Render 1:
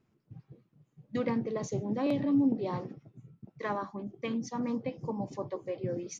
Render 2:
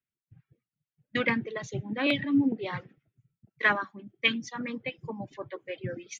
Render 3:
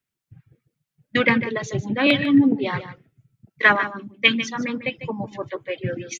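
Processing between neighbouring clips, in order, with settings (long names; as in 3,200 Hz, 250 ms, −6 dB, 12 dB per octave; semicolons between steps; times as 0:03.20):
reverb reduction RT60 1.6 s; flat-topped bell 2,300 Hz +15.5 dB; multiband upward and downward expander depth 70%
single-tap delay 149 ms −12.5 dB; level +8.5 dB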